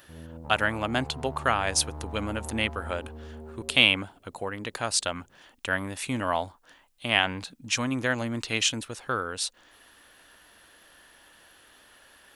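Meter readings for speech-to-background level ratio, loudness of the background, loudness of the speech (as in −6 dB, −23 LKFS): 14.0 dB, −41.5 LKFS, −27.5 LKFS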